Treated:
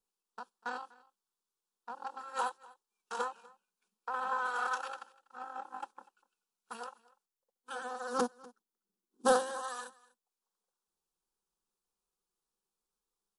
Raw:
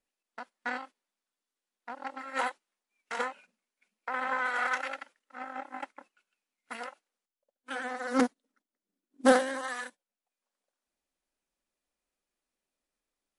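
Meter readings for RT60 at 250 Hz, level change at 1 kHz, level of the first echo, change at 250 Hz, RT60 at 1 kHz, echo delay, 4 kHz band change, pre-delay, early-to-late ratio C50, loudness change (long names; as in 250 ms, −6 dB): no reverb audible, −2.0 dB, −22.5 dB, −11.5 dB, no reverb audible, 245 ms, −4.0 dB, no reverb audible, no reverb audible, −5.0 dB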